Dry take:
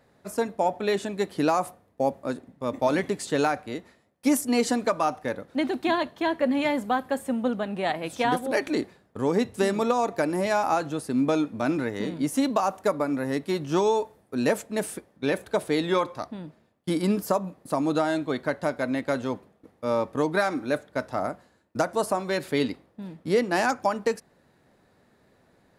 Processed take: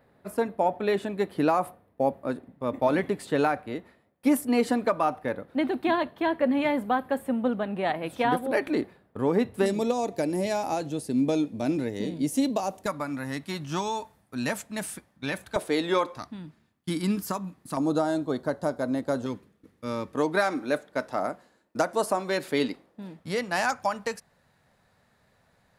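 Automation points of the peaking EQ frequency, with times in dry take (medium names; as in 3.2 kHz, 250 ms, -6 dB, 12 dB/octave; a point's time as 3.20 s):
peaking EQ -13 dB 1.1 oct
6.4 kHz
from 9.66 s 1.3 kHz
from 12.86 s 430 Hz
from 15.56 s 110 Hz
from 16.17 s 550 Hz
from 17.77 s 2.3 kHz
from 19.26 s 710 Hz
from 20.14 s 88 Hz
from 23.19 s 330 Hz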